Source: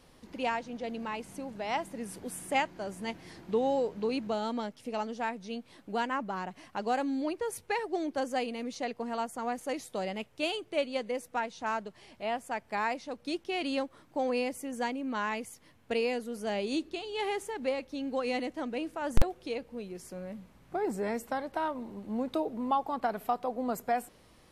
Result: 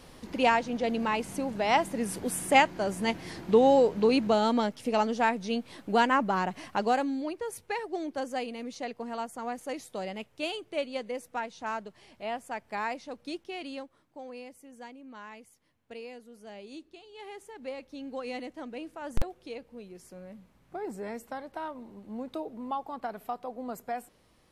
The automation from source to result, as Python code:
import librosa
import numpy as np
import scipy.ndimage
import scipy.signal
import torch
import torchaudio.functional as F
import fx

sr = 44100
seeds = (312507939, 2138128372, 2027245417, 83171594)

y = fx.gain(x, sr, db=fx.line((6.7, 8.0), (7.23, -1.5), (13.18, -1.5), (14.22, -13.0), (17.16, -13.0), (17.88, -5.0)))